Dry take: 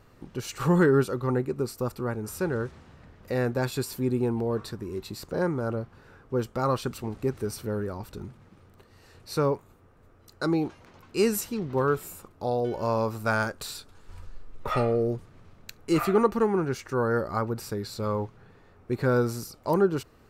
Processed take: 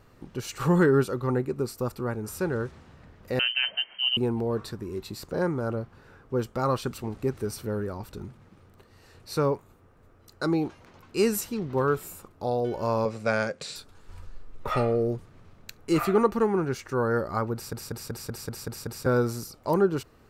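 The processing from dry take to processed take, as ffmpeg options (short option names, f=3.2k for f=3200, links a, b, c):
-filter_complex "[0:a]asettb=1/sr,asplit=3[a][b][c];[a]atrim=end=3.394[d];[b]atrim=start=3.39:end=4.17,asetpts=PTS-STARTPTS,afade=t=in:d=0.004:c=qsin,afade=t=out:st=0.776:d=0.004:c=qsin,lowpass=f=2.7k:t=q:w=0.5098,lowpass=f=2.7k:t=q:w=0.6013,lowpass=f=2.7k:t=q:w=0.9,lowpass=f=2.7k:t=q:w=2.563,afreqshift=-3200[e];[c]atrim=start=4.166[f];[d][e]acrossfade=d=0.004:c1=hsin:c2=qsin[g];[g][f]acrossfade=d=0.004:c1=qsin:c2=hsin,asettb=1/sr,asplit=3[h][i][j];[h]atrim=end=13.054[k];[i]atrim=start=13.05:end=13.76,asetpts=PTS-STARTPTS,afade=t=in:d=0.004:c=qsin,afade=t=out:st=0.706:d=0.004:c=qsin,highpass=130,equalizer=f=160:t=q:w=4:g=7,equalizer=f=320:t=q:w=4:g=-4,equalizer=f=520:t=q:w=4:g=8,equalizer=f=920:t=q:w=4:g=-7,equalizer=f=1.3k:t=q:w=4:g=-5,equalizer=f=2.2k:t=q:w=4:g=7,lowpass=f=7.9k:w=0.5412,lowpass=f=7.9k:w=1.3066[l];[j]atrim=start=13.756[m];[k][l]acrossfade=d=0.004:c1=hsin:c2=qsin[n];[n][m]acrossfade=d=0.004:c1=qsin:c2=hsin,asplit=9[o][p][q][r][s][t][u][v][w];[o]atrim=end=17.732[x];[p]atrim=start=17.538:end=17.732[y];[q]atrim=start=17.538:end=17.732[z];[r]atrim=start=17.538:end=17.732[aa];[s]atrim=start=17.538:end=17.732[ab];[t]atrim=start=17.538:end=17.732[ac];[u]atrim=start=17.538:end=17.732[ad];[v]atrim=start=17.538:end=17.732[ae];[w]atrim=start=19.058[af];[x][y]acrossfade=d=0.004:c1=hsin:c2=hsin[ag];[ag][z]acrossfade=d=0.004:c1=hsin:c2=hsin[ah];[ah][aa]acrossfade=d=0.004:c1=hsin:c2=hsin[ai];[ai][ab]acrossfade=d=0.004:c1=hsin:c2=hsin[aj];[aj][ac]acrossfade=d=0.004:c1=hsin:c2=hsin[ak];[ak][ad]acrossfade=d=0.004:c1=hsin:c2=hsin[al];[al][ae]acrossfade=d=0.004:c1=hsin:c2=hsin[am];[am][af]acrossfade=d=0.004:c1=hsin:c2=hsin"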